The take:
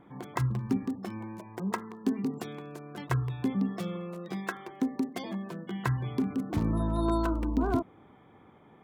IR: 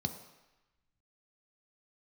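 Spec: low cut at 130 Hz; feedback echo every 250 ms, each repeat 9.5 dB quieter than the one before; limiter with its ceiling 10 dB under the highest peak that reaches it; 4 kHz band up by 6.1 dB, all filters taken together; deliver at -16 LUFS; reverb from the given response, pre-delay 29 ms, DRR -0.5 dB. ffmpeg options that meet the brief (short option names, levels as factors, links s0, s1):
-filter_complex "[0:a]highpass=130,equalizer=f=4000:t=o:g=7.5,alimiter=limit=0.0668:level=0:latency=1,aecho=1:1:250|500|750|1000:0.335|0.111|0.0365|0.012,asplit=2[s0][s1];[1:a]atrim=start_sample=2205,adelay=29[s2];[s1][s2]afir=irnorm=-1:irlink=0,volume=0.841[s3];[s0][s3]amix=inputs=2:normalize=0,volume=2.51"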